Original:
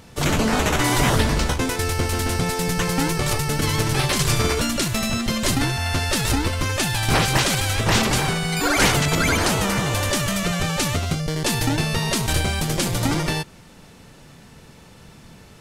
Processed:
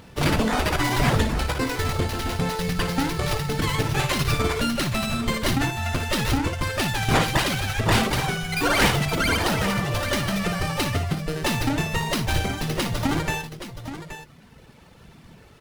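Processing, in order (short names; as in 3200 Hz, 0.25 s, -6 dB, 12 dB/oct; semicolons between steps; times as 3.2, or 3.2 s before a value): reverb removal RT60 1.9 s; tapped delay 56/824 ms -9.5/-11 dB; running maximum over 5 samples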